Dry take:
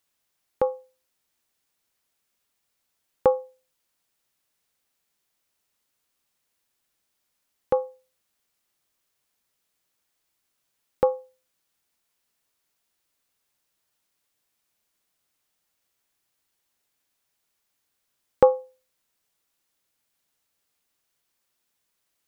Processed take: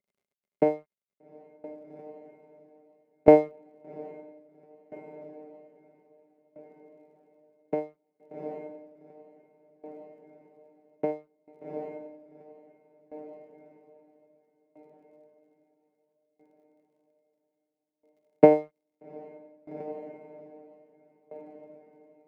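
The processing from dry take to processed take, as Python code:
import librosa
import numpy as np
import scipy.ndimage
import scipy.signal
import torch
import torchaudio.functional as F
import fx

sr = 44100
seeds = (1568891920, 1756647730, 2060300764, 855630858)

p1 = scipy.signal.medfilt(x, 41)
p2 = fx.high_shelf(p1, sr, hz=2100.0, db=7.5)
p3 = fx.over_compress(p2, sr, threshold_db=-26.0, ratio=-1.0)
p4 = p2 + (p3 * librosa.db_to_amplitude(-2.5))
p5 = fx.vocoder(p4, sr, bands=8, carrier='saw', carrier_hz=152.0)
p6 = np.sign(p5) * np.maximum(np.abs(p5) - 10.0 ** (-44.5 / 20.0), 0.0)
p7 = fx.dmg_crackle(p6, sr, seeds[0], per_s=59.0, level_db=-62.0)
p8 = fx.small_body(p7, sr, hz=(210.0, 400.0, 560.0, 2100.0), ring_ms=40, db=18)
p9 = p8 + fx.echo_diffused(p8, sr, ms=788, feedback_pct=60, wet_db=-15.5, dry=0)
p10 = fx.tremolo_decay(p9, sr, direction='decaying', hz=0.61, depth_db=21)
y = p10 * librosa.db_to_amplitude(-4.0)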